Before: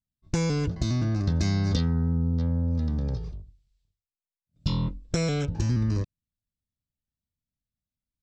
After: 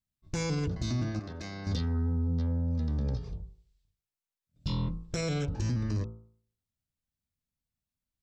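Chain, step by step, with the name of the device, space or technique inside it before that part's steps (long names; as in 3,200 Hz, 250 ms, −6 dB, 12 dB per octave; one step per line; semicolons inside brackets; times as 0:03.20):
hum removal 55.52 Hz, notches 26
soft clipper into limiter (soft clipping −14.5 dBFS, distortion −26 dB; brickwall limiter −23.5 dBFS, peak gain reduction 7 dB)
0:01.19–0:01.67: bass and treble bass −14 dB, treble −8 dB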